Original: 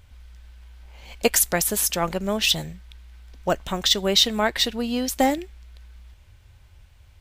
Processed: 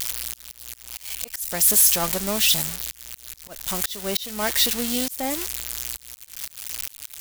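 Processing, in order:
spike at every zero crossing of −10 dBFS
volume swells 346 ms
level −2.5 dB

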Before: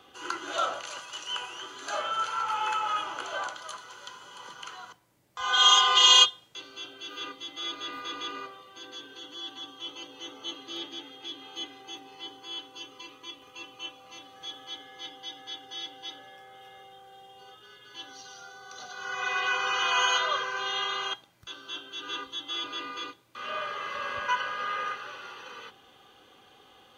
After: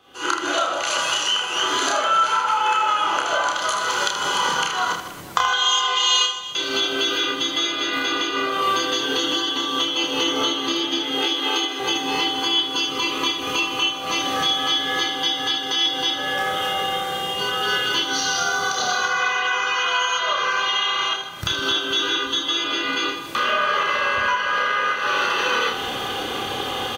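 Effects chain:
camcorder AGC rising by 62 dB per second
0:11.18–0:11.80: Butterworth high-pass 280 Hz
on a send: reverse bouncing-ball delay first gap 30 ms, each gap 1.6×, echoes 5
on the sum: level −2 dB

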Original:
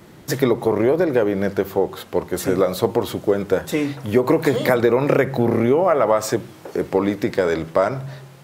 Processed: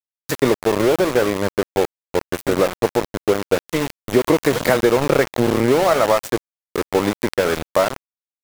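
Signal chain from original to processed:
centre clipping without the shift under −19 dBFS
level +1 dB

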